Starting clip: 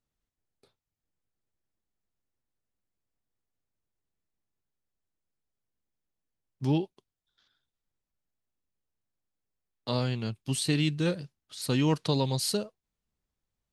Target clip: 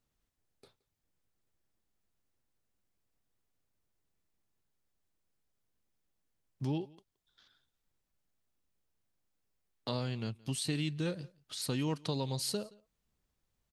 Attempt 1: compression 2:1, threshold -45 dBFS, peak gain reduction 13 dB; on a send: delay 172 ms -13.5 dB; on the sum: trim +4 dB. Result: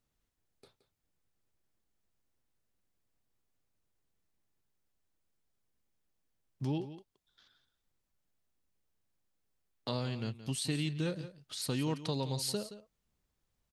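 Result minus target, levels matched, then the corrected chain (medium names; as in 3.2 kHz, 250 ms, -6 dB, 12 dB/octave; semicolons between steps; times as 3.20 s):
echo-to-direct +11 dB
compression 2:1, threshold -45 dBFS, peak gain reduction 13 dB; on a send: delay 172 ms -24.5 dB; on the sum: trim +4 dB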